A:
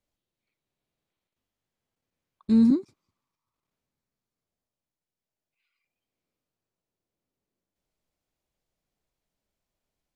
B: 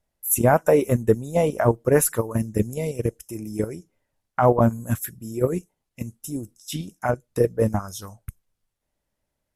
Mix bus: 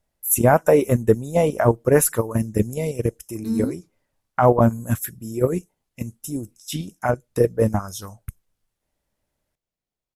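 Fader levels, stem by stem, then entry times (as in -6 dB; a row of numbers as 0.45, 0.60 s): -5.5, +2.0 dB; 0.95, 0.00 s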